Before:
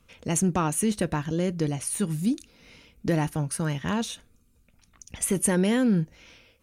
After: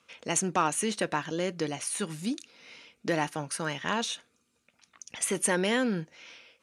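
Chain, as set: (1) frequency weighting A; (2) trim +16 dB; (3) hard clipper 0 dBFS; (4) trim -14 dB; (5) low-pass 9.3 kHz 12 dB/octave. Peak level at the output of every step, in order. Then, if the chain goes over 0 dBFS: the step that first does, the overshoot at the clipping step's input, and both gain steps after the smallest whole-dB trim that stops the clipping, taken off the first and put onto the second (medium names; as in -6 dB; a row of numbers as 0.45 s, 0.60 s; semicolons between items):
-12.0 dBFS, +4.0 dBFS, 0.0 dBFS, -14.0 dBFS, -14.0 dBFS; step 2, 4.0 dB; step 2 +12 dB, step 4 -10 dB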